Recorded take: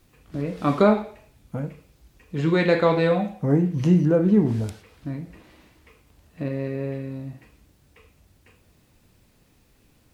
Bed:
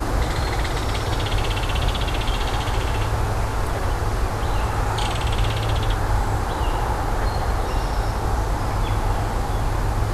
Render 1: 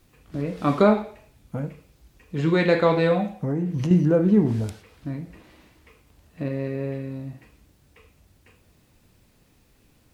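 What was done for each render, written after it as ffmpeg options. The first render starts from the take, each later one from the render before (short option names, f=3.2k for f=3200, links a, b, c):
-filter_complex "[0:a]asettb=1/sr,asplit=3[a][b][c];[a]atrim=end=3.304[d];[b]atrim=start=3.3:end=3.91,asetpts=PTS-STARTPTS,afade=t=in:d=0.004:c=qsin,afade=t=out:st=0.606:d=0.004:c=qsin,acompressor=threshold=-21dB:ratio=5:attack=3.2:release=140:knee=1:detection=peak[e];[c]atrim=start=3.906[f];[d][e]acrossfade=d=0.004:c1=hsin:c2=qsin[g];[g][f]acrossfade=d=0.004:c1=qsin:c2=hsin"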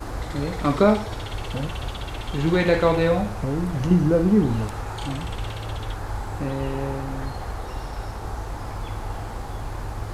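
-filter_complex "[1:a]volume=-9dB[a];[0:a][a]amix=inputs=2:normalize=0"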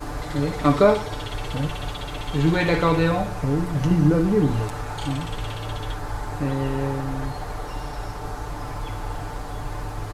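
-af "bandreject=f=60:t=h:w=6,bandreject=f=120:t=h:w=6,bandreject=f=180:t=h:w=6,aecho=1:1:6.8:0.65"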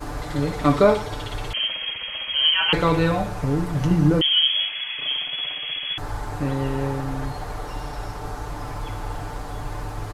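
-filter_complex "[0:a]asettb=1/sr,asplit=3[a][b][c];[a]atrim=end=1.534[d];[b]atrim=start=1.53:end=2.73,asetpts=PTS-STARTPTS,afade=t=in:d=0.004:c=qsin,afade=t=out:st=1.196:d=0.004:c=qsin,lowpass=f=2.8k:t=q:w=0.5098,lowpass=f=2.8k:t=q:w=0.6013,lowpass=f=2.8k:t=q:w=0.9,lowpass=f=2.8k:t=q:w=2.563,afreqshift=-3300[e];[c]atrim=start=2.726[f];[d][e]acrossfade=d=0.004:c1=hsin:c2=qsin[g];[g][f]acrossfade=d=0.004:c1=qsin:c2=hsin,asettb=1/sr,asplit=3[h][i][j];[h]atrim=end=4.214[k];[i]atrim=start=4.21:end=5.98,asetpts=PTS-STARTPTS,afade=t=in:d=0.004:c=qsin,afade=t=out:st=1.766:d=0.004:c=qsin,lowpass=f=2.9k:t=q:w=0.5098,lowpass=f=2.9k:t=q:w=0.6013,lowpass=f=2.9k:t=q:w=0.9,lowpass=f=2.9k:t=q:w=2.563,afreqshift=-3400[l];[j]atrim=start=5.976[m];[k][l]acrossfade=d=0.004:c1=hsin:c2=qsin[n];[n][m]acrossfade=d=0.004:c1=qsin:c2=hsin"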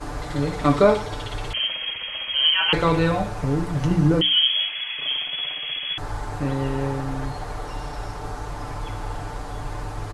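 -af "lowpass=f=11k:w=0.5412,lowpass=f=11k:w=1.3066,bandreject=f=60:t=h:w=6,bandreject=f=120:t=h:w=6,bandreject=f=180:t=h:w=6,bandreject=f=240:t=h:w=6,bandreject=f=300:t=h:w=6"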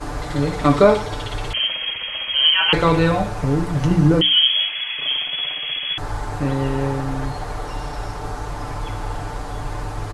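-af "volume=3.5dB,alimiter=limit=-3dB:level=0:latency=1"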